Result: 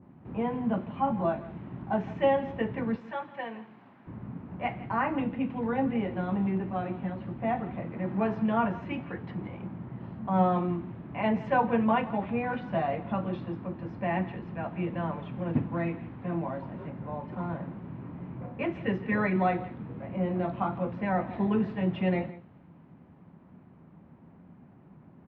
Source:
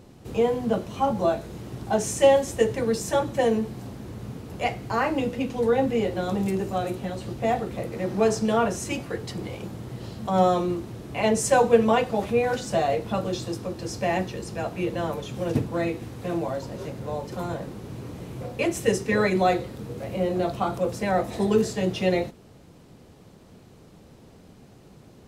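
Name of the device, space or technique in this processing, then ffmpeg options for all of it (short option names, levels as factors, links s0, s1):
bass cabinet: -filter_complex "[0:a]highpass=67,equalizer=f=170:t=q:w=4:g=8,equalizer=f=250:t=q:w=4:g=5,equalizer=f=460:t=q:w=4:g=-8,equalizer=f=960:t=q:w=4:g=5,lowpass=f=2100:w=0.5412,lowpass=f=2100:w=1.3066,asettb=1/sr,asplit=3[s0][s1][s2];[s0]atrim=end=2.964[s3];[s1]atrim=start=2.96:end=4.07,asetpts=PTS-STARTPTS,afade=t=in:d=0.004:c=qsin,afade=t=out:st=1.106:d=0.004:c=qsin,highpass=f=1300:p=1[s4];[s2]atrim=start=4.066[s5];[s3][s4]acrossfade=d=0.004:c1=hsin:c2=qsin[s6];[s6][s5]acrossfade=d=0.004:c1=qsin:c2=hsin,aecho=1:1:165:0.141,adynamicequalizer=threshold=0.00398:dfrequency=3300:dqfactor=1:tfrequency=3300:tqfactor=1:attack=5:release=100:ratio=0.375:range=4:mode=boostabove:tftype=bell,volume=0.501"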